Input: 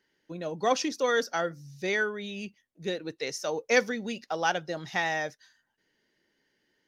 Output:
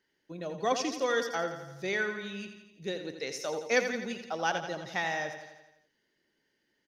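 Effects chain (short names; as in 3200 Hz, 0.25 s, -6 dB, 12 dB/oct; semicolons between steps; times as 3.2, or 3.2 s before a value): feedback echo 85 ms, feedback 58%, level -9 dB; gain -3.5 dB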